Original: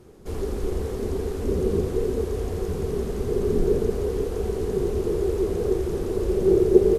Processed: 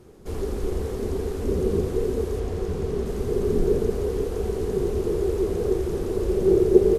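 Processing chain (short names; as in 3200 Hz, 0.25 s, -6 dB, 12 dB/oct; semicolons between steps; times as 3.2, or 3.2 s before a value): 2.39–3.06 high shelf 10000 Hz -10.5 dB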